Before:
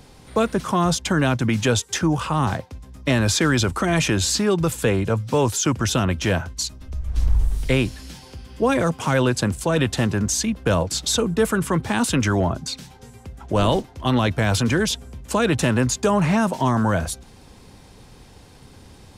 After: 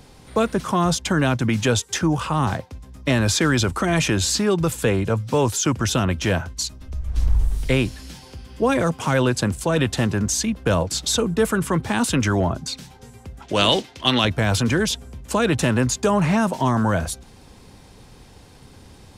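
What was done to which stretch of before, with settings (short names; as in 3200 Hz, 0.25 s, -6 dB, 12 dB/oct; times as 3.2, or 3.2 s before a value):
13.42–14.25 weighting filter D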